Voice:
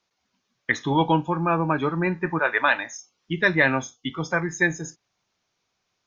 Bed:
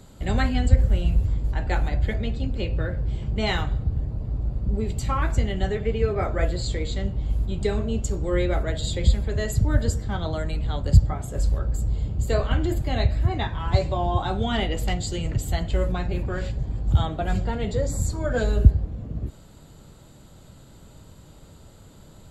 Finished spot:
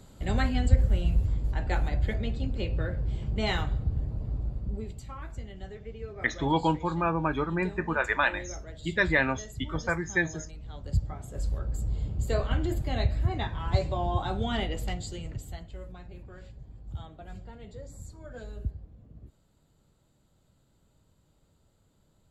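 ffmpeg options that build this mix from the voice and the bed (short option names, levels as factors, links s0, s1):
-filter_complex "[0:a]adelay=5550,volume=0.562[s0];[1:a]volume=2.51,afade=t=out:st=4.29:d=0.77:silence=0.223872,afade=t=in:st=10.61:d=1.4:silence=0.251189,afade=t=out:st=14.52:d=1.19:silence=0.199526[s1];[s0][s1]amix=inputs=2:normalize=0"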